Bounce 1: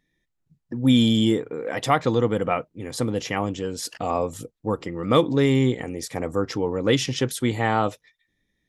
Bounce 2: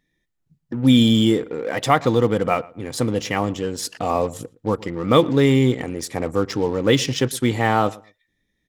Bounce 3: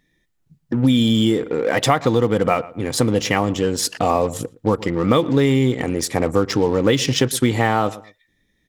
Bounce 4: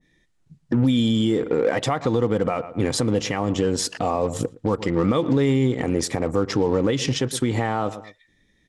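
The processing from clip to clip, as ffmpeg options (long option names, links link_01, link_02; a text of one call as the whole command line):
ffmpeg -i in.wav -filter_complex "[0:a]asplit=2[link_01][link_02];[link_02]acrusher=bits=4:mix=0:aa=0.5,volume=-10dB[link_03];[link_01][link_03]amix=inputs=2:normalize=0,asplit=2[link_04][link_05];[link_05]adelay=115,lowpass=frequency=2100:poles=1,volume=-21dB,asplit=2[link_06][link_07];[link_07]adelay=115,lowpass=frequency=2100:poles=1,volume=0.22[link_08];[link_04][link_06][link_08]amix=inputs=3:normalize=0,volume=1dB" out.wav
ffmpeg -i in.wav -af "acompressor=threshold=-19dB:ratio=6,volume=6.5dB" out.wav
ffmpeg -i in.wav -af "lowpass=frequency=9800:width=0.5412,lowpass=frequency=9800:width=1.3066,alimiter=limit=-13.5dB:level=0:latency=1:release=218,adynamicequalizer=threshold=0.0112:dfrequency=1500:dqfactor=0.7:tfrequency=1500:tqfactor=0.7:attack=5:release=100:ratio=0.375:range=2:mode=cutabove:tftype=highshelf,volume=3dB" out.wav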